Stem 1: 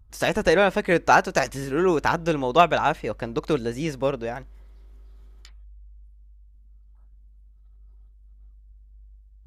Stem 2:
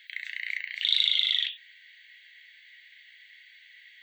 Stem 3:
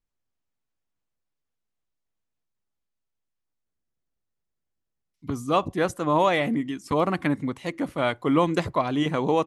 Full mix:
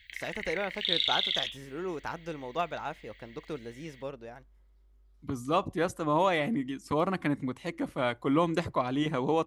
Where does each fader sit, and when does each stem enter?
-15.0, -4.5, -5.0 dB; 0.00, 0.00, 0.00 s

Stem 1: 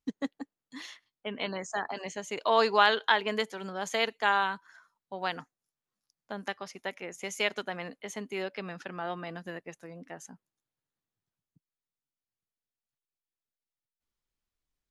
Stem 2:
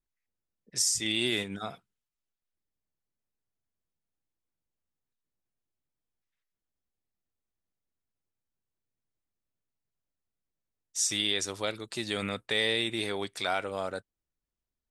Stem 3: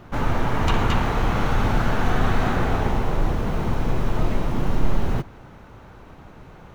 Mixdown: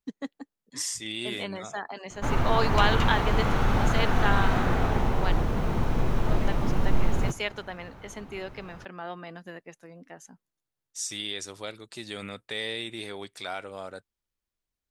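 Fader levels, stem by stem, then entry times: -2.0, -5.0, -3.0 dB; 0.00, 0.00, 2.10 s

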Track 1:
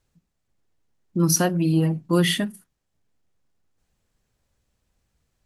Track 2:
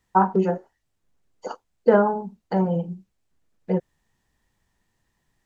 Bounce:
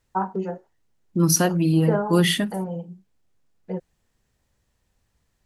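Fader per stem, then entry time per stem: +1.0, -7.0 dB; 0.00, 0.00 s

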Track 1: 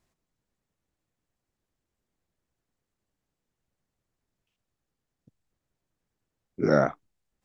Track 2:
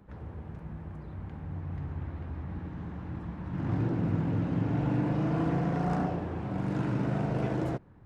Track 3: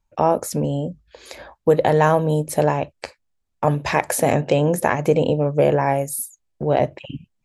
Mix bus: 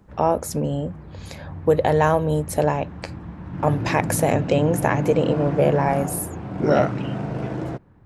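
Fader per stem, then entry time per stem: +0.5, +2.5, -2.0 dB; 0.00, 0.00, 0.00 s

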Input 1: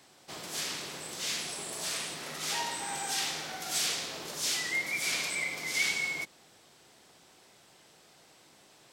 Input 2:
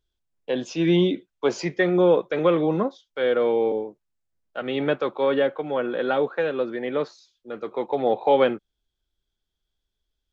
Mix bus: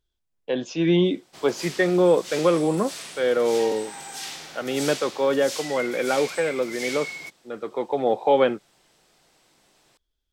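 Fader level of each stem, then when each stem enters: -2.5, 0.0 dB; 1.05, 0.00 s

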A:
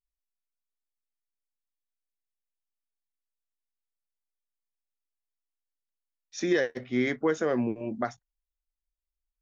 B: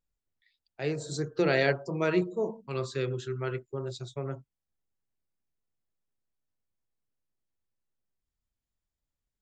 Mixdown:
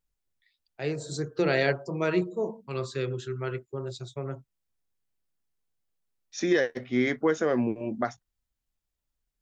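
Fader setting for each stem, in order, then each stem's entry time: +1.5, +0.5 dB; 0.00, 0.00 s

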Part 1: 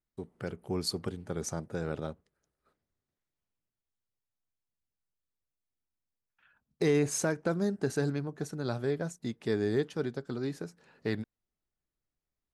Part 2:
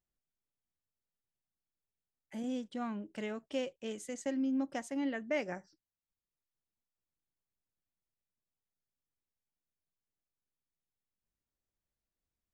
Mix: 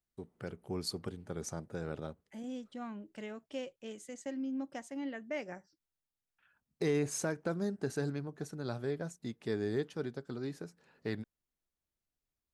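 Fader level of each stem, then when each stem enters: -5.0, -4.5 dB; 0.00, 0.00 s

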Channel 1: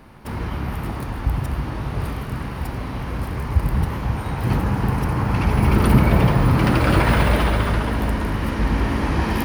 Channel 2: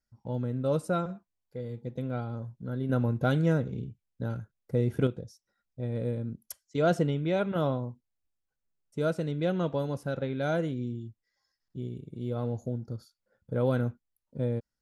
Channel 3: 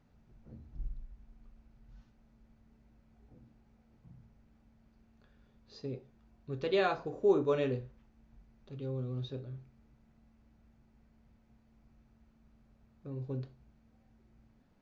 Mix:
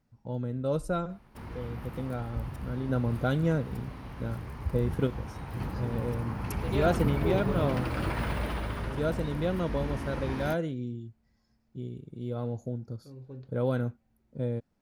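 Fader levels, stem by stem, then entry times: -14.5, -1.5, -6.0 dB; 1.10, 0.00, 0.00 s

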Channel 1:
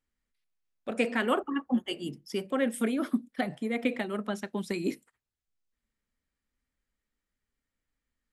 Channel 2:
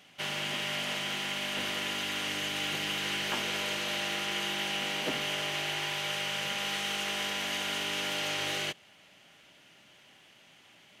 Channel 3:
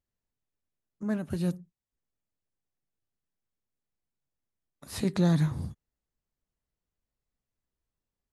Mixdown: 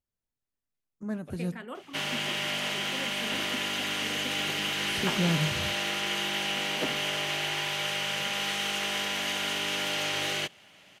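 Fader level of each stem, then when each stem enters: -14.0, +2.5, -3.5 dB; 0.40, 1.75, 0.00 s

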